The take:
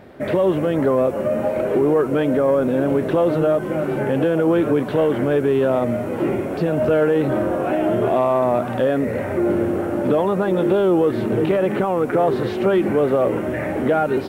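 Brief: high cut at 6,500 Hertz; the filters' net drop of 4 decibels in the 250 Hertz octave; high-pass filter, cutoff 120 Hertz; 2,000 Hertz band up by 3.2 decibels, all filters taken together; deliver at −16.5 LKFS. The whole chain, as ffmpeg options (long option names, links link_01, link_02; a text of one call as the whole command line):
ffmpeg -i in.wav -af "highpass=120,lowpass=6500,equalizer=frequency=250:width_type=o:gain=-5.5,equalizer=frequency=2000:width_type=o:gain=4.5,volume=4dB" out.wav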